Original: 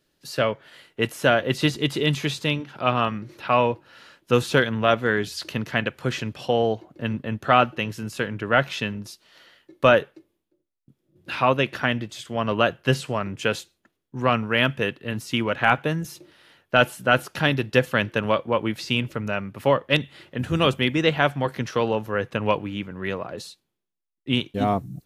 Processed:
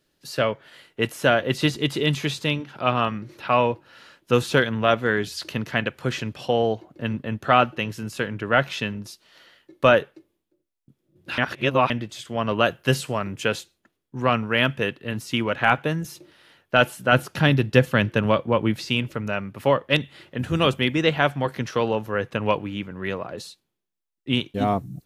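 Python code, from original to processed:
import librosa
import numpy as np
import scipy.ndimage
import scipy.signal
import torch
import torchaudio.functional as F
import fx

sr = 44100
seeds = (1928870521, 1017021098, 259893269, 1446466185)

y = fx.high_shelf(x, sr, hz=fx.line((12.62, 6700.0), (13.42, 11000.0)), db=10.5, at=(12.62, 13.42), fade=0.02)
y = fx.peak_eq(y, sr, hz=120.0, db=6.5, octaves=2.6, at=(17.12, 18.82))
y = fx.edit(y, sr, fx.reverse_span(start_s=11.38, length_s=0.52), tone=tone)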